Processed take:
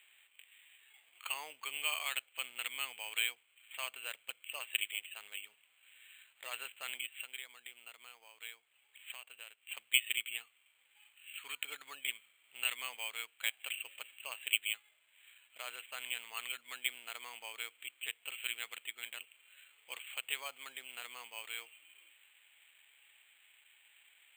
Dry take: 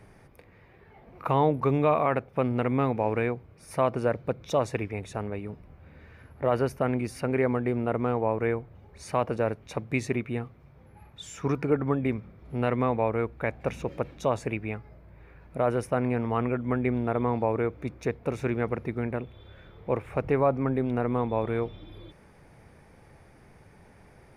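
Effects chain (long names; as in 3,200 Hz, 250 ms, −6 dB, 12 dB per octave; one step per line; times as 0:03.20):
0:07.05–0:09.67: downward compressor 4 to 1, threshold −34 dBFS, peak gain reduction 12.5 dB
high-pass with resonance 2,800 Hz, resonance Q 11
bad sample-rate conversion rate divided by 8×, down filtered, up hold
level −2.5 dB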